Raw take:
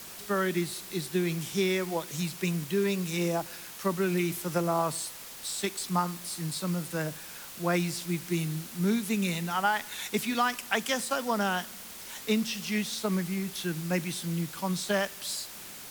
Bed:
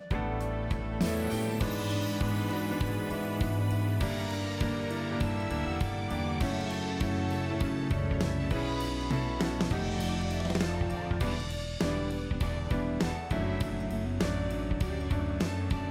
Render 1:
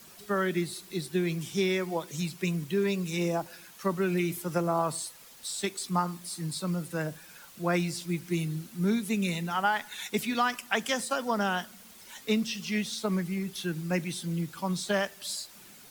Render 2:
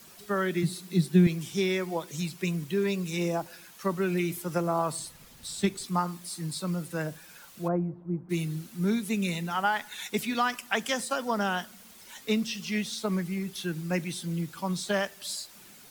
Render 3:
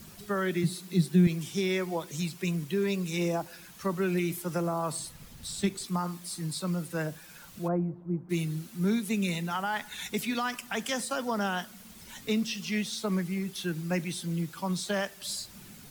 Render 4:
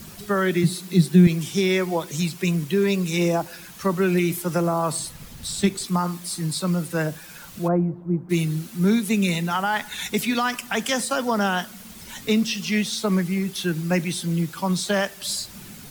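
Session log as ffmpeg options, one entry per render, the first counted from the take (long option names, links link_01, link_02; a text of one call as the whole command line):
ffmpeg -i in.wav -af "afftdn=noise_reduction=9:noise_floor=-44" out.wav
ffmpeg -i in.wav -filter_complex "[0:a]asettb=1/sr,asplit=3[link_01][link_02][link_03];[link_01]atrim=end=0.634[link_04];[link_02]atrim=start=0.63:end=1.27,asetpts=PTS-STARTPTS,afade=type=in:duration=0.004:curve=qsin,afade=type=out:start_time=0.636:duration=0.004:curve=qsin,highpass=frequency=170:width_type=q:width=4.9[link_05];[link_03]atrim=start=1.266[link_06];[link_04][link_05]acrossfade=duration=0.004:curve1=hsin:curve2=qsin[link_07];[link_07][link_06]acrossfade=duration=0.004:curve1=qsin:curve2=hsin,asettb=1/sr,asplit=3[link_08][link_09][link_10];[link_08]atrim=end=4.994[link_11];[link_09]atrim=start=4.99:end=5.86,asetpts=PTS-STARTPTS,afade=type=in:duration=0.004:curve=qsin,afade=type=out:start_time=0.866:duration=0.004:curve=qsin,bass=frequency=250:gain=15,treble=frequency=4000:gain=-3[link_12];[link_10]atrim=start=5.856[link_13];[link_11][link_12]acrossfade=duration=0.004:curve1=hsin:curve2=qsin[link_14];[link_14][link_13]acrossfade=duration=0.004:curve1=qsin:curve2=hsin,asplit=3[link_15][link_16][link_17];[link_15]afade=type=out:start_time=7.67:duration=0.02[link_18];[link_16]lowpass=frequency=1000:width=0.5412,lowpass=frequency=1000:width=1.3066,afade=type=in:start_time=7.67:duration=0.02,afade=type=out:start_time=8.29:duration=0.02[link_19];[link_17]afade=type=in:start_time=8.29:duration=0.02[link_20];[link_18][link_19][link_20]amix=inputs=3:normalize=0" out.wav
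ffmpeg -i in.wav -filter_complex "[0:a]acrossover=split=210|5000[link_01][link_02][link_03];[link_01]acompressor=mode=upward:threshold=-40dB:ratio=2.5[link_04];[link_02]alimiter=limit=-22.5dB:level=0:latency=1[link_05];[link_04][link_05][link_03]amix=inputs=3:normalize=0" out.wav
ffmpeg -i in.wav -af "volume=8dB" out.wav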